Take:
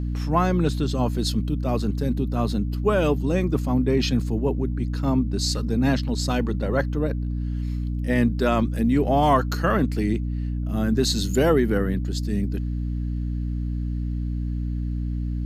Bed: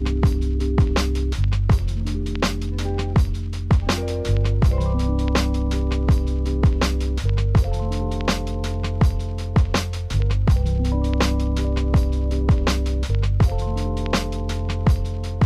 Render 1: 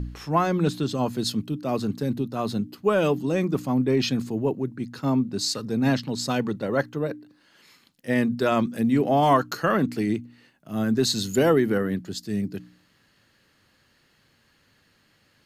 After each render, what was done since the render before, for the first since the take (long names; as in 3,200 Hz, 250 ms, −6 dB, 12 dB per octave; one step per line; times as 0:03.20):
hum removal 60 Hz, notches 5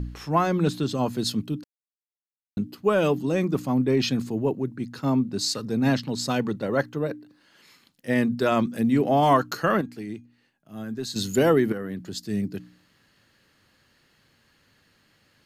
0:01.64–0:02.57: silence
0:09.81–0:11.16: tuned comb filter 810 Hz, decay 0.22 s, mix 70%
0:11.72–0:12.17: downward compressor, threshold −28 dBFS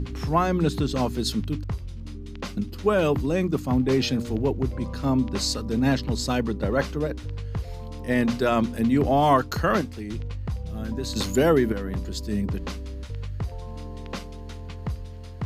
mix in bed −13 dB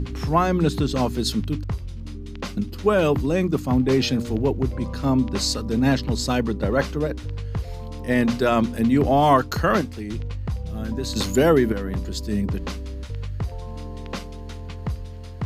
level +2.5 dB